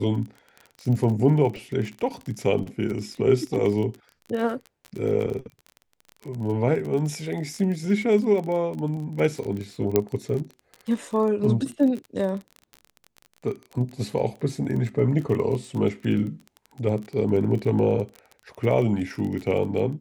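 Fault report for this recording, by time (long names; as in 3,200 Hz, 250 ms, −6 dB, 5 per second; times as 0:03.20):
surface crackle 25 per second −30 dBFS
0:09.96: click −6 dBFS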